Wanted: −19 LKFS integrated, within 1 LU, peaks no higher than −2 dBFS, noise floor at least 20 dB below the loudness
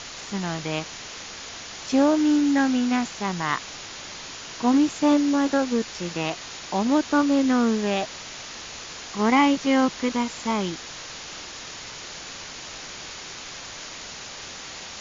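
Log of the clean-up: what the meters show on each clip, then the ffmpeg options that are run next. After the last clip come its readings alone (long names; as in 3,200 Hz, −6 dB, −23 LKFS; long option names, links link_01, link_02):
background noise floor −39 dBFS; target noise floor −43 dBFS; integrated loudness −23.0 LKFS; sample peak −9.5 dBFS; target loudness −19.0 LKFS
→ -af "afftdn=noise_reduction=6:noise_floor=-39"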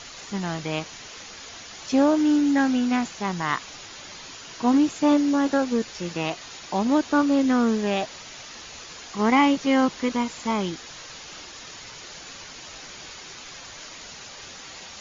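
background noise floor −42 dBFS; target noise floor −43 dBFS
→ -af "afftdn=noise_reduction=6:noise_floor=-42"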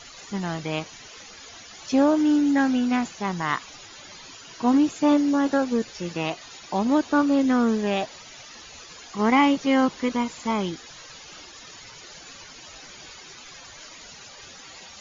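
background noise floor −45 dBFS; integrated loudness −23.0 LKFS; sample peak −9.5 dBFS; target loudness −19.0 LKFS
→ -af "volume=4dB"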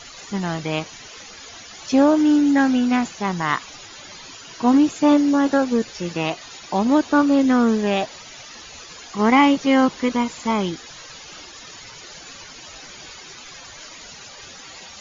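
integrated loudness −19.0 LKFS; sample peak −5.5 dBFS; background noise floor −41 dBFS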